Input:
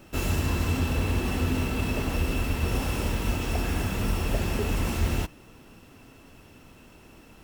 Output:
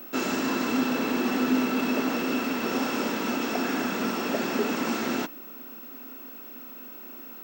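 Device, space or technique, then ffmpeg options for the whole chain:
old television with a line whistle: -af "highpass=frequency=230:width=0.5412,highpass=frequency=230:width=1.3066,equalizer=frequency=250:width_type=q:width=4:gain=6,equalizer=frequency=1400:width_type=q:width=4:gain=5,equalizer=frequency=2900:width_type=q:width=4:gain=-4,lowpass=frequency=7200:width=0.5412,lowpass=frequency=7200:width=1.3066,aeval=exprs='val(0)+0.00631*sin(2*PI*15734*n/s)':channel_layout=same,volume=3.5dB"

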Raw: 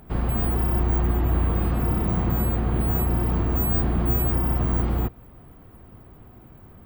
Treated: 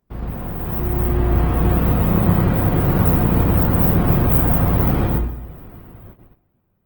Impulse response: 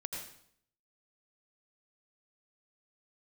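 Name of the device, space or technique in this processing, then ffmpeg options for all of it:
speakerphone in a meeting room: -filter_complex "[1:a]atrim=start_sample=2205[link_01];[0:a][link_01]afir=irnorm=-1:irlink=0,dynaudnorm=framelen=250:gausssize=9:maxgain=14.5dB,agate=range=-20dB:threshold=-38dB:ratio=16:detection=peak,volume=-1.5dB" -ar 48000 -c:a libopus -b:a 16k

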